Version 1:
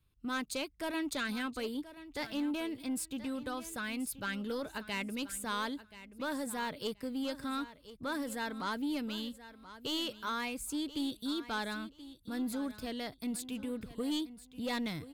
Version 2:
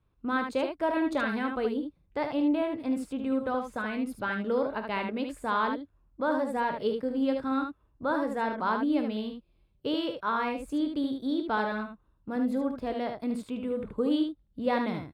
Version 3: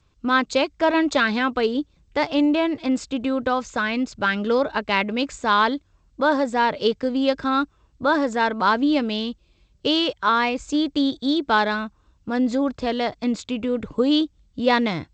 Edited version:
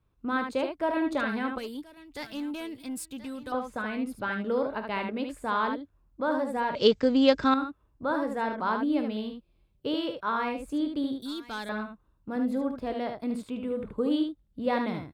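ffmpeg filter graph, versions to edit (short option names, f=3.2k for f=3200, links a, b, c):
-filter_complex "[0:a]asplit=2[a][b];[1:a]asplit=4[c][d][e][f];[c]atrim=end=1.582[g];[a]atrim=start=1.578:end=3.522[h];[d]atrim=start=3.518:end=6.752[i];[2:a]atrim=start=6.748:end=7.542[j];[e]atrim=start=7.538:end=11.222[k];[b]atrim=start=11.218:end=11.692[l];[f]atrim=start=11.688[m];[g][h]acrossfade=d=0.004:c1=hsin:c2=hsin[n];[n][i]acrossfade=d=0.004:c1=hsin:c2=hsin[o];[o][j]acrossfade=d=0.004:c1=hsin:c2=hsin[p];[p][k]acrossfade=d=0.004:c1=hsin:c2=hsin[q];[q][l]acrossfade=d=0.004:c1=hsin:c2=hsin[r];[r][m]acrossfade=d=0.004:c1=hsin:c2=hsin"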